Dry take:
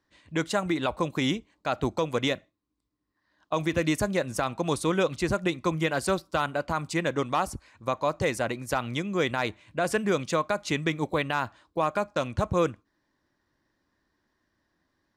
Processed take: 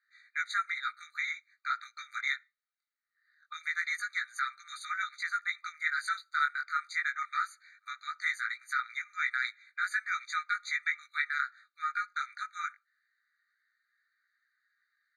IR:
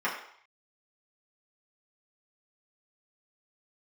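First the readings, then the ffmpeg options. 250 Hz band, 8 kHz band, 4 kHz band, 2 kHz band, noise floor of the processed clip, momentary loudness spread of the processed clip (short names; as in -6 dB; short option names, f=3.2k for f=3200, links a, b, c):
under -40 dB, -10.0 dB, -7.5 dB, +2.0 dB, -85 dBFS, 8 LU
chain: -af "bandpass=f=1.8k:t=q:w=0.78:csg=0,flanger=delay=16:depth=5.7:speed=0.21,afftfilt=real='re*eq(mod(floor(b*sr/1024/1200),2),1)':imag='im*eq(mod(floor(b*sr/1024/1200),2),1)':win_size=1024:overlap=0.75,volume=6dB"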